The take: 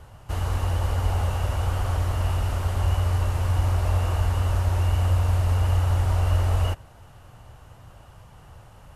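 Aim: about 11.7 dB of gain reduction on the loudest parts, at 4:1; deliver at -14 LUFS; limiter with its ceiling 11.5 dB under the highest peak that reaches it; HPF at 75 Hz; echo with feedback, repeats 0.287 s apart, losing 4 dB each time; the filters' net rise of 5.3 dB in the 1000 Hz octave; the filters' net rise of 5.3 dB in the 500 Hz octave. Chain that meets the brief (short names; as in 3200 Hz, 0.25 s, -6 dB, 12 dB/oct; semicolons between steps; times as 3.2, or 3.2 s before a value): HPF 75 Hz; bell 500 Hz +5 dB; bell 1000 Hz +5 dB; compressor 4:1, threshold -34 dBFS; limiter -34.5 dBFS; feedback echo 0.287 s, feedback 63%, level -4 dB; gain +28.5 dB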